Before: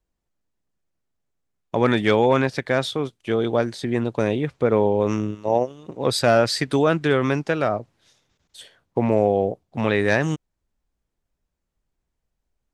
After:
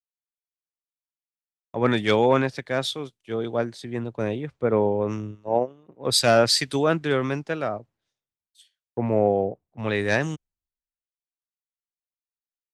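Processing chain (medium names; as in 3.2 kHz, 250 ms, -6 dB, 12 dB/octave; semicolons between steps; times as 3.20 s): three bands expanded up and down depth 100%; trim -3.5 dB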